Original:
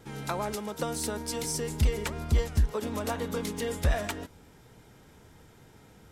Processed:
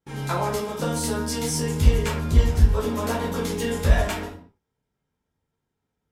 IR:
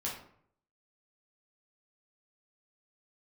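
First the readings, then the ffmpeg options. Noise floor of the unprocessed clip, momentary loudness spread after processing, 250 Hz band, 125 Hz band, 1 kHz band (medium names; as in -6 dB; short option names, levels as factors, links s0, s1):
-56 dBFS, 6 LU, +7.5 dB, +8.5 dB, +7.0 dB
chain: -filter_complex "[0:a]agate=range=0.0251:threshold=0.00447:ratio=16:detection=peak[s0];[1:a]atrim=start_sample=2205,afade=t=out:st=0.3:d=0.01,atrim=end_sample=13671[s1];[s0][s1]afir=irnorm=-1:irlink=0,volume=1.58"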